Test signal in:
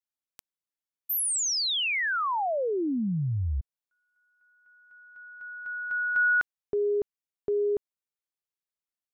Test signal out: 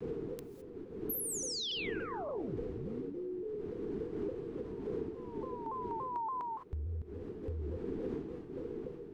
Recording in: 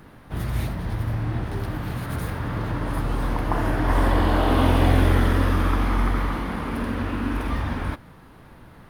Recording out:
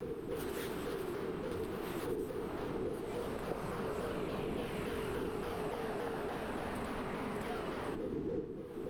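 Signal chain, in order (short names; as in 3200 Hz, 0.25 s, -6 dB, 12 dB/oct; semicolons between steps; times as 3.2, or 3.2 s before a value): wind noise 140 Hz -20 dBFS; low shelf 390 Hz -12 dB; non-linear reverb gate 0.23 s rising, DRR 11.5 dB; compressor 8:1, threshold -36 dBFS; frequency shift -490 Hz; shaped vibrato saw down 3.5 Hz, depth 160 cents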